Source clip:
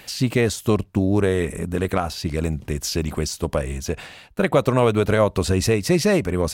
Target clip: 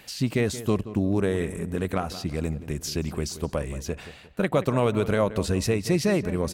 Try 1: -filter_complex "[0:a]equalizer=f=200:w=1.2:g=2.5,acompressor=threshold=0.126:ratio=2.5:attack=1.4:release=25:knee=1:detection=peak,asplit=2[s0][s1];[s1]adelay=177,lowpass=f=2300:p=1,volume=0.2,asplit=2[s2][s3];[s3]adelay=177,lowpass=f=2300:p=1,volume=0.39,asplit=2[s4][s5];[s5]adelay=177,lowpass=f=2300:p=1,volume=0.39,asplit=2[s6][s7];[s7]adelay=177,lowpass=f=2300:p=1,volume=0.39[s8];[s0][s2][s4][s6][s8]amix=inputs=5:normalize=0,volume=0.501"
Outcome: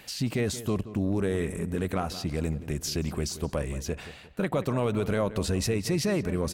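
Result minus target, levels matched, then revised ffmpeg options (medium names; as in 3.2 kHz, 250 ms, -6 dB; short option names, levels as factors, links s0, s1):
compression: peak gain reduction +6 dB
-filter_complex "[0:a]equalizer=f=200:w=1.2:g=2.5,asplit=2[s0][s1];[s1]adelay=177,lowpass=f=2300:p=1,volume=0.2,asplit=2[s2][s3];[s3]adelay=177,lowpass=f=2300:p=1,volume=0.39,asplit=2[s4][s5];[s5]adelay=177,lowpass=f=2300:p=1,volume=0.39,asplit=2[s6][s7];[s7]adelay=177,lowpass=f=2300:p=1,volume=0.39[s8];[s0][s2][s4][s6][s8]amix=inputs=5:normalize=0,volume=0.501"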